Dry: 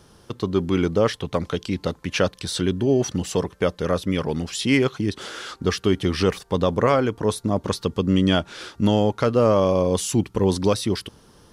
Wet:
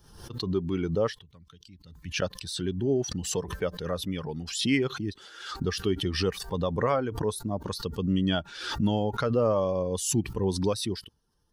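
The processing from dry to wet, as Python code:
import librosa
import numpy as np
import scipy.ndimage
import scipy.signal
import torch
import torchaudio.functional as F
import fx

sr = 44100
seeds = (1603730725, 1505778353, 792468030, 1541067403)

y = fx.bin_expand(x, sr, power=1.5)
y = fx.tone_stack(y, sr, knobs='6-0-2', at=(1.22, 2.22))
y = fx.pre_swell(y, sr, db_per_s=68.0)
y = y * 10.0 ** (-5.0 / 20.0)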